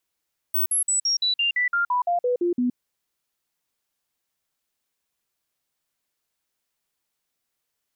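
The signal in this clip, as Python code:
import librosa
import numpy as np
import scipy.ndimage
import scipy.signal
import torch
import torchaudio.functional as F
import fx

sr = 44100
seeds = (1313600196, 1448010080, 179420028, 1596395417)

y = fx.stepped_sweep(sr, from_hz=15800.0, direction='down', per_octave=2, tones=13, dwell_s=0.12, gap_s=0.05, level_db=-19.0)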